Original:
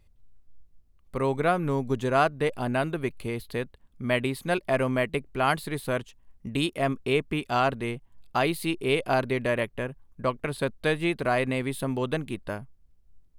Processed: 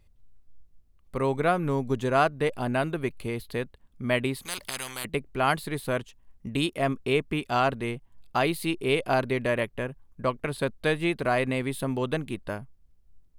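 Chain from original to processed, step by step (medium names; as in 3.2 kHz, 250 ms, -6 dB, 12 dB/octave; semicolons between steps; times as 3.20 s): 4.45–5.05 s: spectrum-flattening compressor 10:1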